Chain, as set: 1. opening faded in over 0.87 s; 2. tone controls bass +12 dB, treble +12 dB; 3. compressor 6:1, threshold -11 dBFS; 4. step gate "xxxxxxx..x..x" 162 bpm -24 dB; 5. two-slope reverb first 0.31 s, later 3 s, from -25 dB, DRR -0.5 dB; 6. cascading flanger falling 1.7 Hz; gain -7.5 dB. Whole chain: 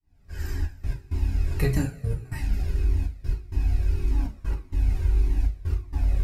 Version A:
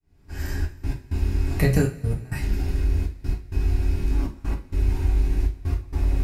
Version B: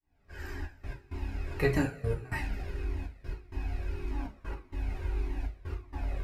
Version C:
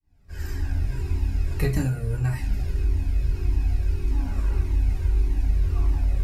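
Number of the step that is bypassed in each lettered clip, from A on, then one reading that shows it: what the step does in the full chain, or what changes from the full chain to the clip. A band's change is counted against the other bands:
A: 6, 125 Hz band -3.0 dB; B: 2, crest factor change +6.5 dB; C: 4, crest factor change -1.5 dB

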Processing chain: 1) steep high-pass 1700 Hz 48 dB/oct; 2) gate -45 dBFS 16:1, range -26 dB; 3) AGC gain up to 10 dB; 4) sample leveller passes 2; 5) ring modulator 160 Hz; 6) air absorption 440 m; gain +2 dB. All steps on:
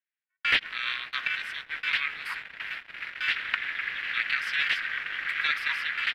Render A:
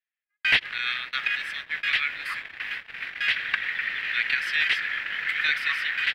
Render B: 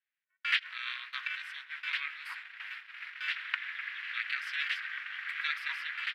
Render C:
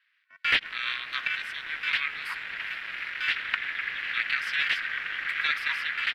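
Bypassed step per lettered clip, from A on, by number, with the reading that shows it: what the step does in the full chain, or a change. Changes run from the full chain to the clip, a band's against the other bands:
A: 5, crest factor change -2.5 dB; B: 4, crest factor change +3.5 dB; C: 2, momentary loudness spread change -2 LU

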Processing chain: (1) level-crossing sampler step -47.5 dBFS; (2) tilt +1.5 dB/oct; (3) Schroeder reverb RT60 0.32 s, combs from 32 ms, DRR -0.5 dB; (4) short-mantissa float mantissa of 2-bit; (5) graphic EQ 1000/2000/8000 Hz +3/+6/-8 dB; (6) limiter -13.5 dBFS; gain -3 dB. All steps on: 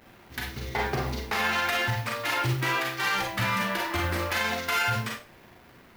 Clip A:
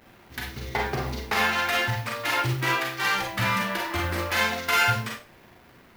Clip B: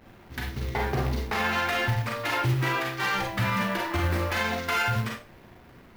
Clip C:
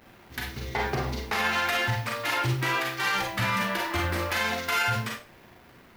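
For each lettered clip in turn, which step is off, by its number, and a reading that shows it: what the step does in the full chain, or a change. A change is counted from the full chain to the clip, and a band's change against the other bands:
6, crest factor change +5.0 dB; 2, 125 Hz band +4.5 dB; 4, distortion -20 dB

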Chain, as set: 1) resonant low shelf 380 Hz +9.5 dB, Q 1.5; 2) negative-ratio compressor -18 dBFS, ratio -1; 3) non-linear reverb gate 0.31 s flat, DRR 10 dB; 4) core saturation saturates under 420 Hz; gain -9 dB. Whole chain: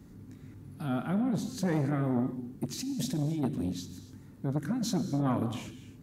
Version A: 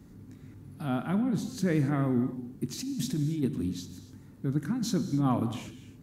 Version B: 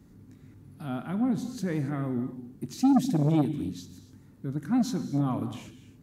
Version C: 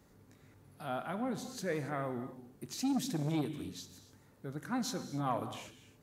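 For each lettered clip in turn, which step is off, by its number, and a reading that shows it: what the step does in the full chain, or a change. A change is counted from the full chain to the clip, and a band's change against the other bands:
4, loudness change +1.5 LU; 2, crest factor change +2.0 dB; 1, 125 Hz band -7.0 dB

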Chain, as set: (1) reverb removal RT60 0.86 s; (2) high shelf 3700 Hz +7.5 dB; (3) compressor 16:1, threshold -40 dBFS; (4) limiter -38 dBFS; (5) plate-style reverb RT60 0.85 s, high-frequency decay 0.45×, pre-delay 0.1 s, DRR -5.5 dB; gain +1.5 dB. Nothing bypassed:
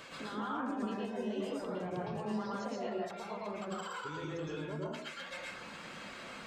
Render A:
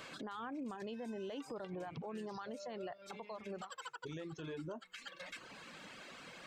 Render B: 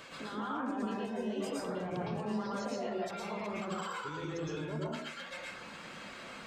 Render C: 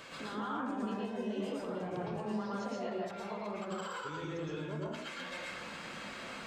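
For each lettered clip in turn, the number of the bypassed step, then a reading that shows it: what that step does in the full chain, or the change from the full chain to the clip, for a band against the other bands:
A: 5, 8 kHz band +2.5 dB; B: 3, mean gain reduction 10.0 dB; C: 1, momentary loudness spread change -2 LU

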